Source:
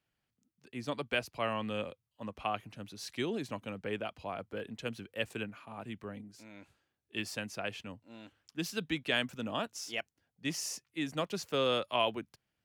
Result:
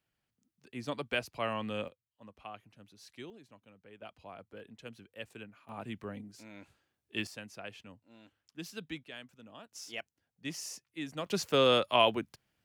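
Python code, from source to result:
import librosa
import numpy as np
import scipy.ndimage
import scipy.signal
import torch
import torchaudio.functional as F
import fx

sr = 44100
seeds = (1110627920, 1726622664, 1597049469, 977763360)

y = fx.gain(x, sr, db=fx.steps((0.0, -0.5), (1.88, -11.5), (3.3, -18.5), (4.02, -9.0), (5.69, 1.5), (7.27, -7.0), (9.05, -16.0), (9.72, -4.0), (11.26, 5.0)))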